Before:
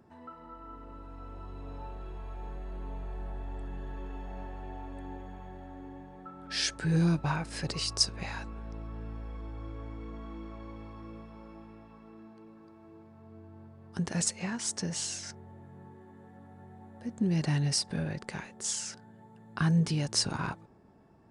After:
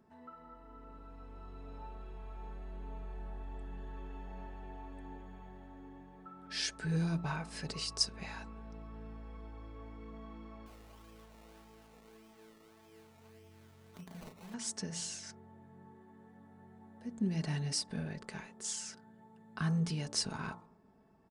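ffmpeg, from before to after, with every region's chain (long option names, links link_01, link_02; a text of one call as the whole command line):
ffmpeg -i in.wav -filter_complex "[0:a]asettb=1/sr,asplit=3[link_01][link_02][link_03];[link_01]atrim=end=10.664[link_04];[link_02]atrim=start=10.66:end=14.54,asetpts=PTS-STARTPTS,afade=type=in:duration=0.004:curve=qsin,afade=type=out:start_time=3.876:duration=0.004:curve=qsin,acrusher=samples=22:mix=1:aa=0.000001:lfo=1:lforange=13.2:lforate=1.7,acompressor=threshold=-47dB:ratio=2.5:attack=3.2:release=140:knee=1:detection=peak,asplit=2[link_05][link_06];[link_06]adelay=34,volume=-6dB[link_07];[link_05][link_07]amix=inputs=2:normalize=0,atrim=end_sample=171108[link_08];[link_03]atrim=start=14.536[link_09];[link_04][link_08]acrossfade=duration=0.004:curve1=hsin:curve2=qsin[link_10];[link_10][link_09]acrossfade=duration=0.004:curve1=qsin:curve2=hsin,aecho=1:1:4.6:0.43,bandreject=frequency=57.62:width_type=h:width=4,bandreject=frequency=115.24:width_type=h:width=4,bandreject=frequency=172.86:width_type=h:width=4,bandreject=frequency=230.48:width_type=h:width=4,bandreject=frequency=288.1:width_type=h:width=4,bandreject=frequency=345.72:width_type=h:width=4,bandreject=frequency=403.34:width_type=h:width=4,bandreject=frequency=460.96:width_type=h:width=4,bandreject=frequency=518.58:width_type=h:width=4,bandreject=frequency=576.2:width_type=h:width=4,bandreject=frequency=633.82:width_type=h:width=4,bandreject=frequency=691.44:width_type=h:width=4,bandreject=frequency=749.06:width_type=h:width=4,bandreject=frequency=806.68:width_type=h:width=4,bandreject=frequency=864.3:width_type=h:width=4,bandreject=frequency=921.92:width_type=h:width=4,bandreject=frequency=979.54:width_type=h:width=4,bandreject=frequency=1037.16:width_type=h:width=4,bandreject=frequency=1094.78:width_type=h:width=4,bandreject=frequency=1152.4:width_type=h:width=4,bandreject=frequency=1210.02:width_type=h:width=4,bandreject=frequency=1267.64:width_type=h:width=4,bandreject=frequency=1325.26:width_type=h:width=4,bandreject=frequency=1382.88:width_type=h:width=4,volume=-6.5dB" out.wav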